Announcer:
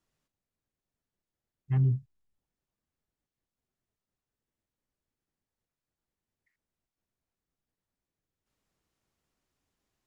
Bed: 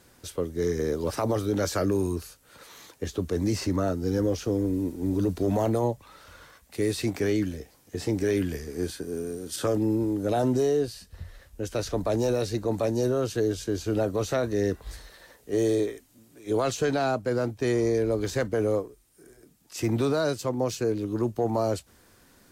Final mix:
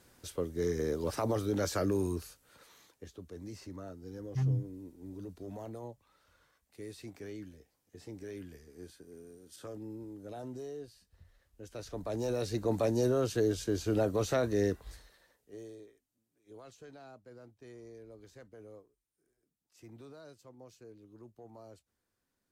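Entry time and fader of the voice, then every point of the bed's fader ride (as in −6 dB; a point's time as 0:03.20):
2.65 s, −5.0 dB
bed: 0:02.32 −5.5 dB
0:03.18 −19 dB
0:11.44 −19 dB
0:12.68 −3.5 dB
0:14.64 −3.5 dB
0:15.79 −26.5 dB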